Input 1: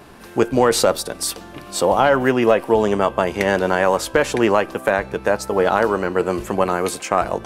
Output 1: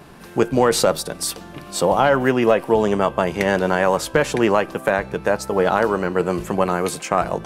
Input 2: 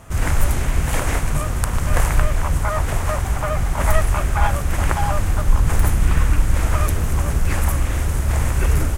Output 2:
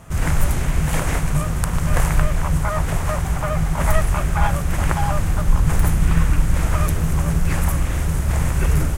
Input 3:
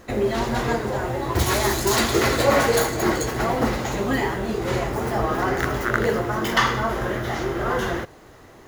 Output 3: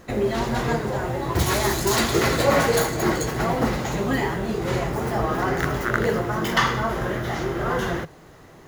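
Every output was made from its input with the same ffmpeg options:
-af "equalizer=f=160:t=o:w=0.26:g=11.5,volume=-1dB"

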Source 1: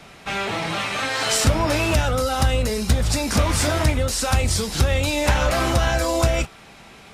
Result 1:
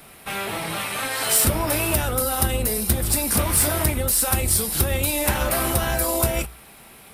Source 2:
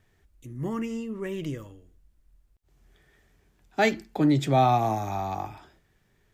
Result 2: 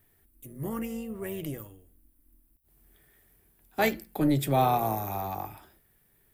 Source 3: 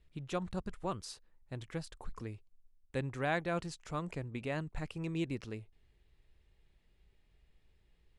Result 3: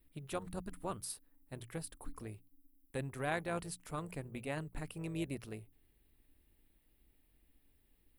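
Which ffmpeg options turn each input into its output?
-af "aexciter=amount=5.3:drive=9.2:freq=9.2k,tremolo=f=280:d=0.462,bandreject=f=60:t=h:w=6,bandreject=f=120:t=h:w=6,bandreject=f=180:t=h:w=6,volume=-1dB"

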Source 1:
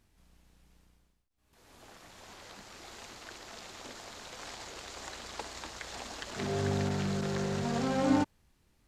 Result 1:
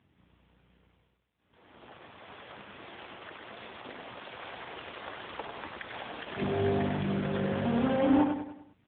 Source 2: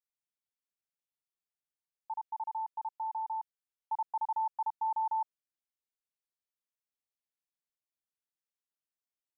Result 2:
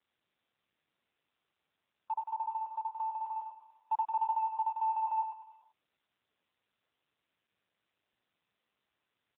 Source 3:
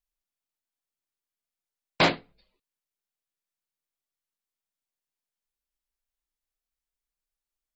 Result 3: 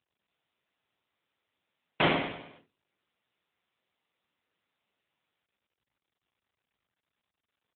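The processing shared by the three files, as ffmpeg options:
-af "aresample=8000,asoftclip=type=tanh:threshold=-22dB,aresample=44100,aecho=1:1:98|196|294|392|490:0.501|0.226|0.101|0.0457|0.0206,volume=4.5dB" -ar 8000 -c:a libopencore_amrnb -b:a 7950

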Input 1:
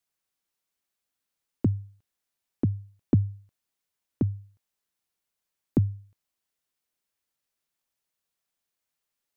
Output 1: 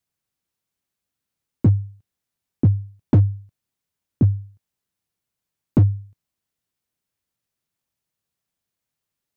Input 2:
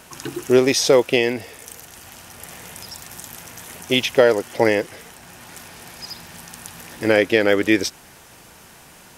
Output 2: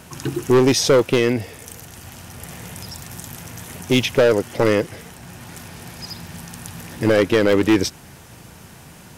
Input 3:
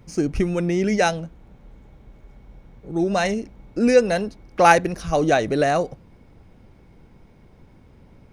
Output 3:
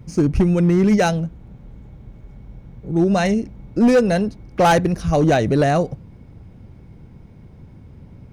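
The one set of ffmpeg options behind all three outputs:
-af "equalizer=f=110:t=o:w=2.5:g=11.5,asoftclip=type=hard:threshold=-9.5dB"

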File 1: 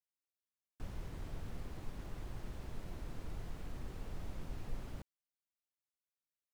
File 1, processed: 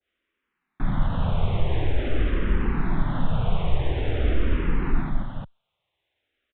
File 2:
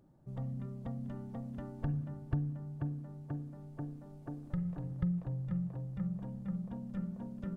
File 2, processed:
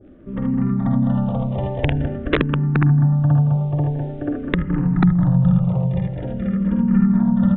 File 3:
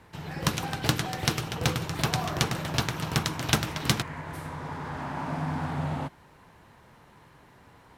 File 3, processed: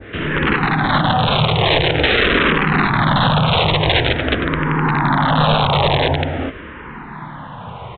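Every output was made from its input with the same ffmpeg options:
-filter_complex "[0:a]aecho=1:1:50|65|77|164|206|425:0.473|0.316|0.708|0.211|0.531|0.531,asplit=2[a][b];[b]acompressor=threshold=-34dB:ratio=6,volume=2.5dB[c];[a][c]amix=inputs=2:normalize=0,adynamicequalizer=threshold=0.01:dfrequency=2800:dqfactor=0.86:tfrequency=2800:tqfactor=0.86:attack=5:release=100:ratio=0.375:range=3:mode=cutabove:tftype=bell,aresample=8000,aeval=exprs='(mod(8.91*val(0)+1,2)-1)/8.91':c=same,aresample=44100,alimiter=level_in=17dB:limit=-1dB:release=50:level=0:latency=1,asplit=2[d][e];[e]afreqshift=-0.47[f];[d][f]amix=inputs=2:normalize=1,volume=-2.5dB"

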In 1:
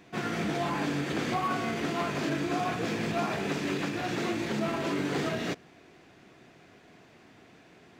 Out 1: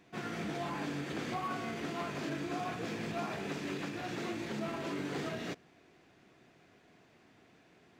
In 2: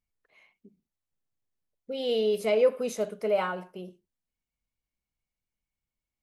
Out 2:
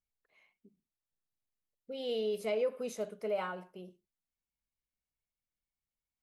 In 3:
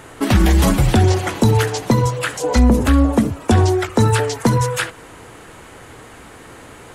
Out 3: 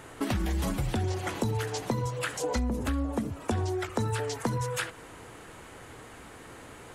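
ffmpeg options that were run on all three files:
-af "acompressor=threshold=-20dB:ratio=4,volume=-7.5dB"

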